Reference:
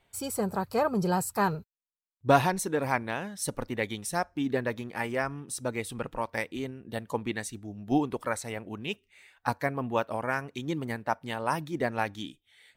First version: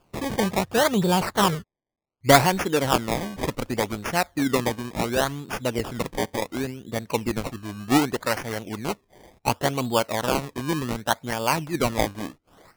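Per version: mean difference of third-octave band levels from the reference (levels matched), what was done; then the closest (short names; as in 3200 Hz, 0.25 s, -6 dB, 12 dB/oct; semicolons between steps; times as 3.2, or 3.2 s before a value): 8.0 dB: decimation with a swept rate 22×, swing 100% 0.68 Hz; gain +6 dB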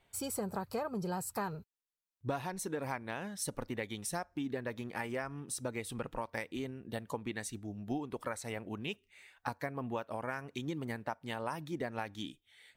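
3.0 dB: compressor 6:1, threshold -32 dBFS, peak gain reduction 16 dB; gain -2 dB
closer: second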